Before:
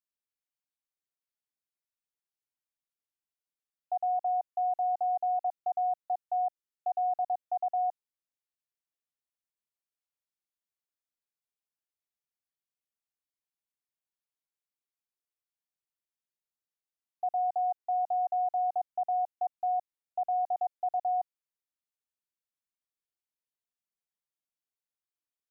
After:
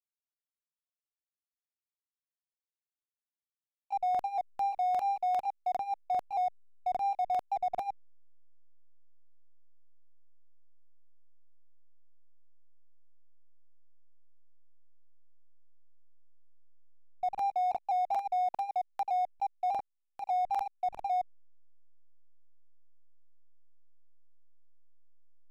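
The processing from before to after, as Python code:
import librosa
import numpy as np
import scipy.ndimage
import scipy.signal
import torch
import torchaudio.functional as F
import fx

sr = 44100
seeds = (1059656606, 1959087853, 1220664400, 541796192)

y = fx.pitch_trill(x, sr, semitones=1.5, every_ms=199)
y = fx.backlash(y, sr, play_db=-40.5)
y = fx.buffer_crackle(y, sr, first_s=0.9, period_s=0.4, block=2048, kind='repeat')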